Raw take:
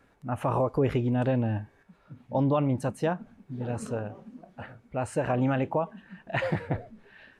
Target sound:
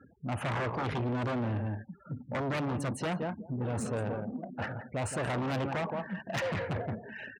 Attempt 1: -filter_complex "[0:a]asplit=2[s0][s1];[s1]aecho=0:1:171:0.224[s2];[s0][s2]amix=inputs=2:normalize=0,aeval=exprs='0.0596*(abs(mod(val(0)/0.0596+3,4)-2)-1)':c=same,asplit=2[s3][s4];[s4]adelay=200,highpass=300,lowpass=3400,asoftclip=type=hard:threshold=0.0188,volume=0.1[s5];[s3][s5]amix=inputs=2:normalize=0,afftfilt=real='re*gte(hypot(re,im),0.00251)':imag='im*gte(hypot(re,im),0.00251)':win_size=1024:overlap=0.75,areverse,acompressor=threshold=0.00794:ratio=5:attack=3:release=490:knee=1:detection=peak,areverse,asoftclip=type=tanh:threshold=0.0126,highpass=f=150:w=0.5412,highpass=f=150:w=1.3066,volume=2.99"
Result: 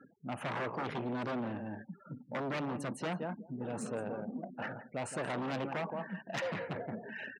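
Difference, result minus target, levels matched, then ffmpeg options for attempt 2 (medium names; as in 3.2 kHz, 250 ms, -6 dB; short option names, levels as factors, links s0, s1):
compression: peak gain reduction +6 dB; 125 Hz band -5.0 dB
-filter_complex "[0:a]asplit=2[s0][s1];[s1]aecho=0:1:171:0.224[s2];[s0][s2]amix=inputs=2:normalize=0,aeval=exprs='0.0596*(abs(mod(val(0)/0.0596+3,4)-2)-1)':c=same,asplit=2[s3][s4];[s4]adelay=200,highpass=300,lowpass=3400,asoftclip=type=hard:threshold=0.0188,volume=0.1[s5];[s3][s5]amix=inputs=2:normalize=0,afftfilt=real='re*gte(hypot(re,im),0.00251)':imag='im*gte(hypot(re,im),0.00251)':win_size=1024:overlap=0.75,areverse,acompressor=threshold=0.0188:ratio=5:attack=3:release=490:knee=1:detection=peak,areverse,asoftclip=type=tanh:threshold=0.0126,highpass=f=73:w=0.5412,highpass=f=73:w=1.3066,volume=2.99"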